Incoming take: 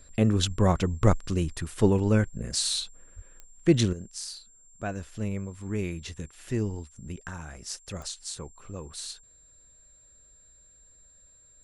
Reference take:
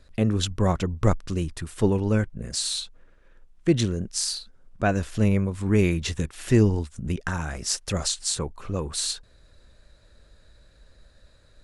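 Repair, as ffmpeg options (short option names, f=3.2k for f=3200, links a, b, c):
-filter_complex "[0:a]adeclick=t=4,bandreject=f=7.4k:w=30,asplit=3[a][b][c];[a]afade=t=out:st=3.15:d=0.02[d];[b]highpass=f=140:w=0.5412,highpass=f=140:w=1.3066,afade=t=in:st=3.15:d=0.02,afade=t=out:st=3.27:d=0.02[e];[c]afade=t=in:st=3.27:d=0.02[f];[d][e][f]amix=inputs=3:normalize=0,asetnsamples=n=441:p=0,asendcmd='3.93 volume volume 10.5dB',volume=0dB"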